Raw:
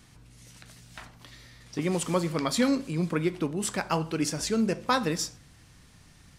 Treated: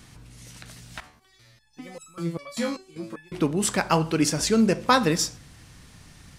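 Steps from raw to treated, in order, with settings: 1.00–3.32 s: resonator arpeggio 5.1 Hz 74–1300 Hz; trim +6 dB

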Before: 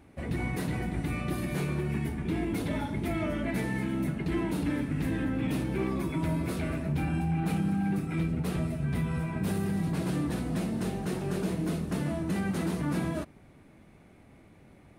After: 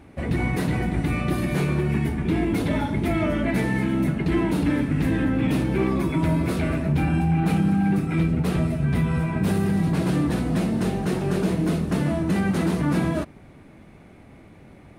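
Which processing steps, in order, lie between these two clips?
treble shelf 6.5 kHz -5.5 dB; trim +8 dB

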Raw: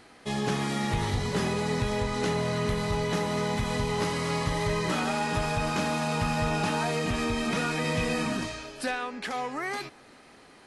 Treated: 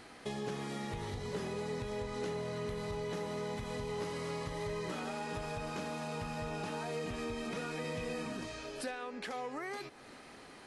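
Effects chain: compression 3:1, threshold -43 dBFS, peak gain reduction 14.5 dB; dynamic bell 450 Hz, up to +6 dB, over -56 dBFS, Q 1.8

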